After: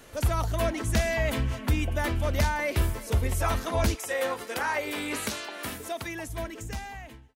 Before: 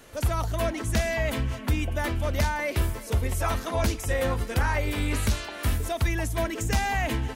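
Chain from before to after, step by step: fade out at the end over 2.10 s; 3.94–6.28 s: high-pass 460 Hz -> 180 Hz 12 dB/octave; short-mantissa float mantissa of 8-bit

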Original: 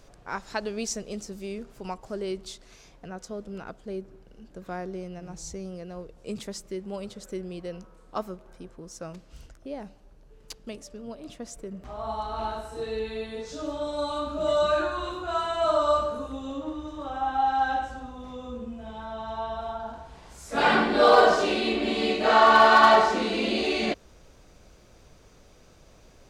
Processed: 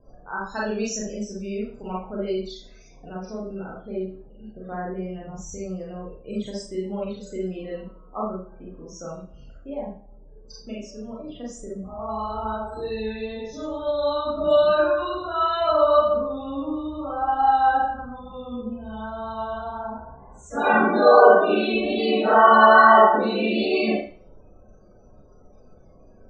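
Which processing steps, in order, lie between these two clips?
3.07–4.65 s: CVSD coder 32 kbps; loudest bins only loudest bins 32; vibrato 2.2 Hz 16 cents; Schroeder reverb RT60 0.41 s, combs from 29 ms, DRR -5.5 dB; trim -2 dB

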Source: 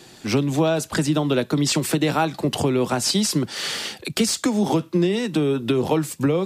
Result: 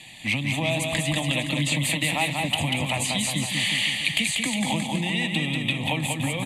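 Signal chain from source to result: 0.69–2.94 s: block-companded coder 7-bit; low-pass 11 kHz 24 dB/octave; resonant high shelf 1.6 kHz +6.5 dB, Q 3; compression, threshold -18 dBFS, peak gain reduction 7.5 dB; static phaser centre 1.5 kHz, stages 6; bouncing-ball echo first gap 190 ms, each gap 0.9×, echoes 5

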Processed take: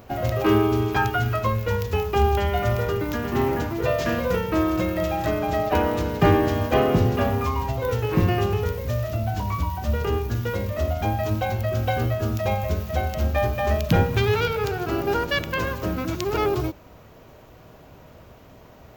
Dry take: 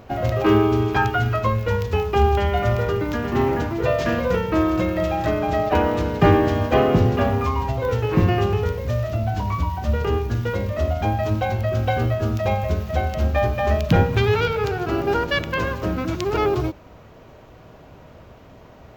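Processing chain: treble shelf 7.7 kHz +12 dB; trim -2.5 dB

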